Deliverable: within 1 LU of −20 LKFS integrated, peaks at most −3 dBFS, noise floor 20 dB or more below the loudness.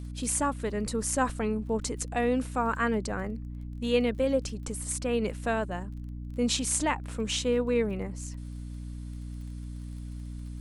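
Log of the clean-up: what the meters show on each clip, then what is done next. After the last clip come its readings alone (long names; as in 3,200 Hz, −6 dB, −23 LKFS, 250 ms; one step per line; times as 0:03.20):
crackle rate 27 per second; mains hum 60 Hz; hum harmonics up to 300 Hz; level of the hum −36 dBFS; integrated loudness −29.5 LKFS; sample peak −10.5 dBFS; target loudness −20.0 LKFS
→ click removal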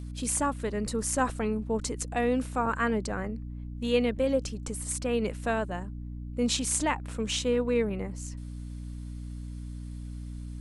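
crackle rate 0.094 per second; mains hum 60 Hz; hum harmonics up to 300 Hz; level of the hum −36 dBFS
→ hum removal 60 Hz, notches 5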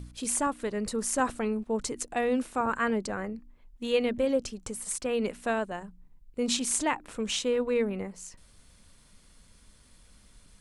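mains hum none found; integrated loudness −30.0 LKFS; sample peak −11.0 dBFS; target loudness −20.0 LKFS
→ level +10 dB
brickwall limiter −3 dBFS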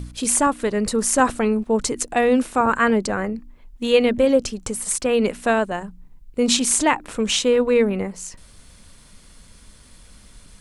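integrated loudness −20.0 LKFS; sample peak −3.0 dBFS; background noise floor −49 dBFS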